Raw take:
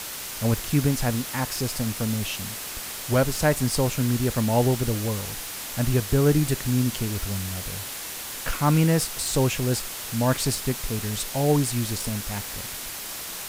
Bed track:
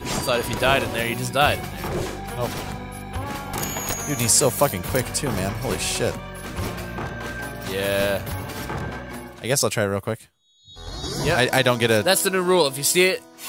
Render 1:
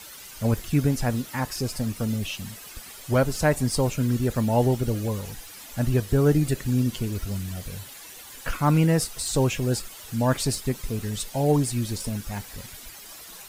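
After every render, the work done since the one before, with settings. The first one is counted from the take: denoiser 12 dB, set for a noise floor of -35 dBFS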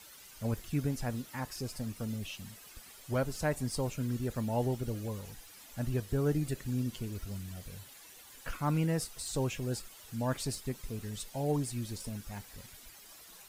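gain -10.5 dB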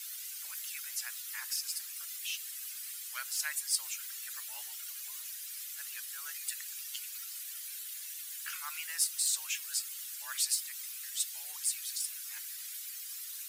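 HPF 1400 Hz 24 dB/oct; tilt +3.5 dB/oct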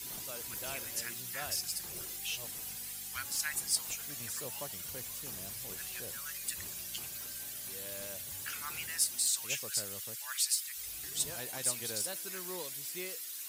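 add bed track -26 dB

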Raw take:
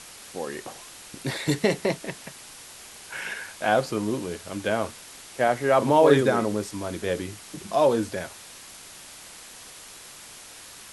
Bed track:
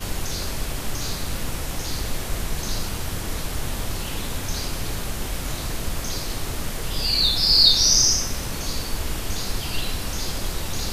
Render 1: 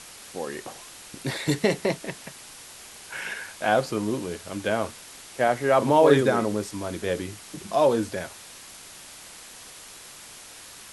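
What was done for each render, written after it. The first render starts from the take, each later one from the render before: nothing audible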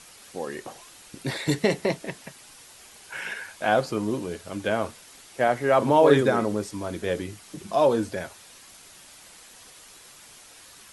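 denoiser 6 dB, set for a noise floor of -45 dBFS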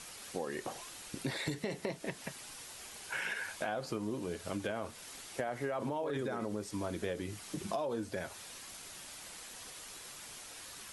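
limiter -16 dBFS, peak gain reduction 10.5 dB; compressor 6:1, threshold -34 dBFS, peak gain reduction 13 dB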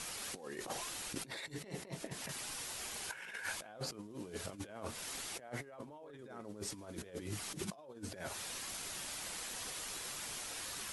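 negative-ratio compressor -43 dBFS, ratio -0.5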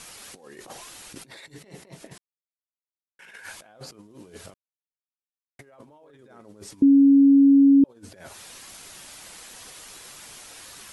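2.18–3.19 mute; 4.54–5.59 mute; 6.82–7.84 bleep 277 Hz -11 dBFS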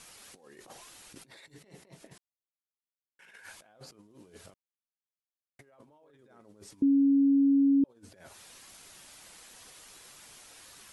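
gain -8.5 dB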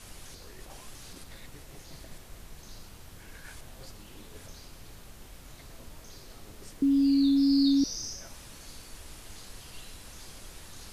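add bed track -20.5 dB

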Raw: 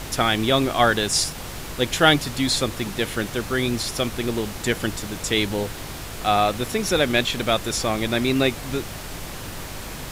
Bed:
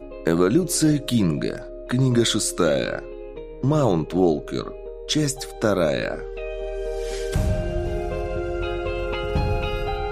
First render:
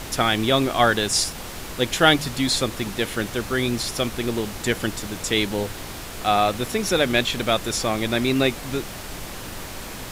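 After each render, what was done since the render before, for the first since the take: de-hum 50 Hz, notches 3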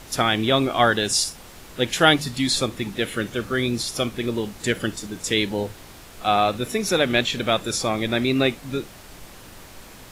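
noise print and reduce 9 dB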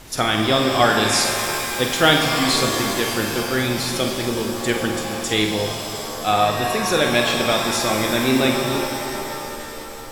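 flutter echo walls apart 8 m, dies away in 0.33 s; shimmer reverb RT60 3 s, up +7 st, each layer -2 dB, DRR 4.5 dB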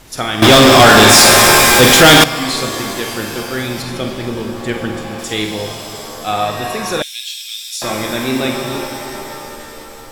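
0.42–2.24 sample leveller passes 5; 3.82–5.19 tone controls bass +4 dB, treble -8 dB; 7.02–7.82 inverse Chebyshev high-pass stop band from 560 Hz, stop band 80 dB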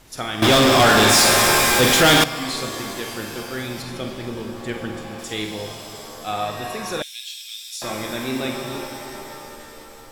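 gain -8 dB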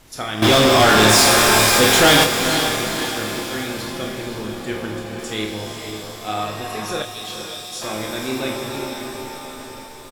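doubler 28 ms -6.5 dB; diffused feedback echo 0.49 s, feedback 51%, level -7.5 dB

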